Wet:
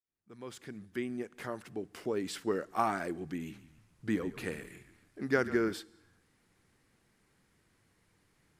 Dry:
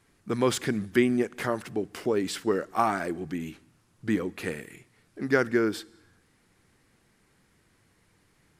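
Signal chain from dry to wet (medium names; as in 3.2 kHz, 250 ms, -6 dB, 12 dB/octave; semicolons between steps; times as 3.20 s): fade-in on the opening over 2.75 s; 3.36–5.73 s: frequency-shifting echo 139 ms, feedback 48%, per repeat -46 Hz, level -14.5 dB; trim -5.5 dB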